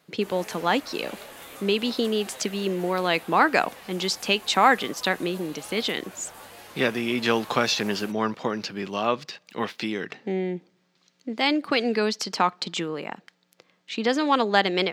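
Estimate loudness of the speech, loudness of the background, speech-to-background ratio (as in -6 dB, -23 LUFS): -25.5 LUFS, -43.0 LUFS, 17.5 dB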